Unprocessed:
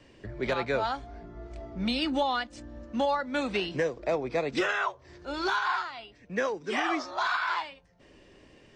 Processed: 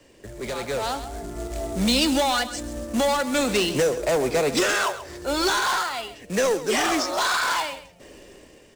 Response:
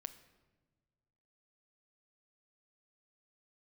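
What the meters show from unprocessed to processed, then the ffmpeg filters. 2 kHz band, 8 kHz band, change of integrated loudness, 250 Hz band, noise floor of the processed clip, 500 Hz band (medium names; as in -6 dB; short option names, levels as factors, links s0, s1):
+5.0 dB, +21.5 dB, +6.5 dB, +7.0 dB, -52 dBFS, +7.0 dB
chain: -filter_complex "[0:a]acrossover=split=180|3800[s0][s1][s2];[s1]asoftclip=type=tanh:threshold=0.0237[s3];[s0][s3][s2]amix=inputs=3:normalize=0,aecho=1:1:133|266:0.211|0.0338,dynaudnorm=f=110:g=17:m=3.16,acrusher=bits=4:mode=log:mix=0:aa=0.000001,equalizer=f=125:t=o:w=1:g=-3,equalizer=f=500:t=o:w=1:g=5,equalizer=f=8000:t=o:w=1:g=11"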